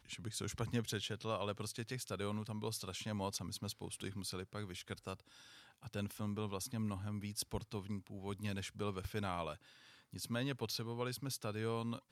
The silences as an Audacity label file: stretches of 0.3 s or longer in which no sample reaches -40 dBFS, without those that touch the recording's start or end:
5.140000	5.870000	silence
9.540000	10.140000	silence